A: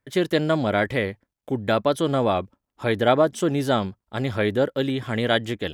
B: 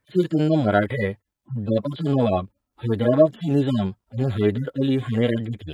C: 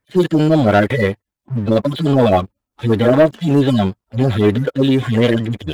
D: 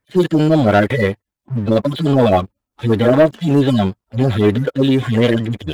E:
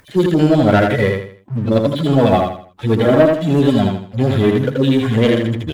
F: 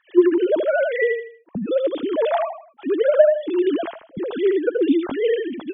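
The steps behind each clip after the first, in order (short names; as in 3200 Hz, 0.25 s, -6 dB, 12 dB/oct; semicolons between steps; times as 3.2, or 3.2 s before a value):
median-filter separation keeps harmonic; gain +5 dB
harmonic-percussive split harmonic -6 dB; sample leveller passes 2; gain +5.5 dB
nothing audible
upward compressor, threshold -33 dBFS; on a send: feedback echo 80 ms, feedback 34%, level -4 dB; on the sum: gain -1 dB
sine-wave speech; gain -5.5 dB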